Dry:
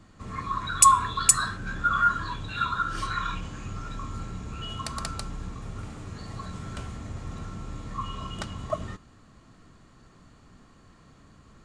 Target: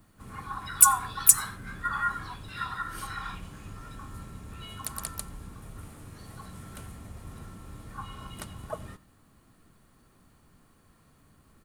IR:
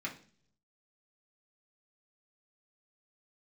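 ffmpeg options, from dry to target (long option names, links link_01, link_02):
-filter_complex "[0:a]aexciter=amount=9.4:drive=9:freq=9800,asplit=3[link_01][link_02][link_03];[link_02]asetrate=33038,aresample=44100,atempo=1.33484,volume=-10dB[link_04];[link_03]asetrate=58866,aresample=44100,atempo=0.749154,volume=-10dB[link_05];[link_01][link_04][link_05]amix=inputs=3:normalize=0,asplit=2[link_06][link_07];[1:a]atrim=start_sample=2205,adelay=89[link_08];[link_07][link_08]afir=irnorm=-1:irlink=0,volume=-23.5dB[link_09];[link_06][link_09]amix=inputs=2:normalize=0,volume=-7.5dB"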